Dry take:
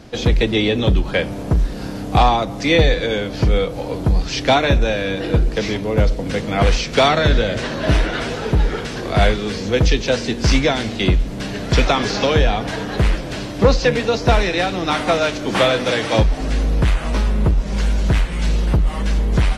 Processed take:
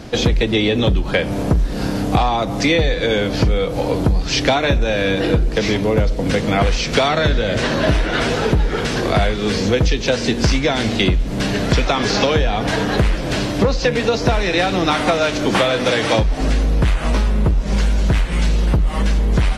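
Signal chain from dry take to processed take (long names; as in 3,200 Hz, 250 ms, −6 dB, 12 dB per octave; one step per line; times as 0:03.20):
downward compressor, threshold −20 dBFS, peak gain reduction 12.5 dB
level +7 dB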